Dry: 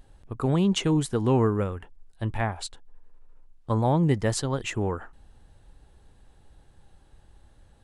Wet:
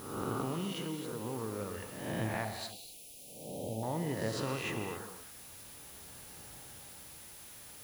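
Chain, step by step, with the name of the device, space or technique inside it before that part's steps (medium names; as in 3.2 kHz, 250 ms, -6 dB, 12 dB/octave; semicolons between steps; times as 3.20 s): reverse spectral sustain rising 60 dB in 0.83 s; medium wave at night (band-pass 120–4300 Hz; compression 6:1, threshold -37 dBFS, peak gain reduction 18.5 dB; tremolo 0.47 Hz, depth 51%; whistle 10 kHz -59 dBFS; white noise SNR 13 dB); 2.45–3.83 s: elliptic band-stop 740–2500 Hz, stop band 40 dB; gated-style reverb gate 290 ms flat, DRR 5.5 dB; trim +3.5 dB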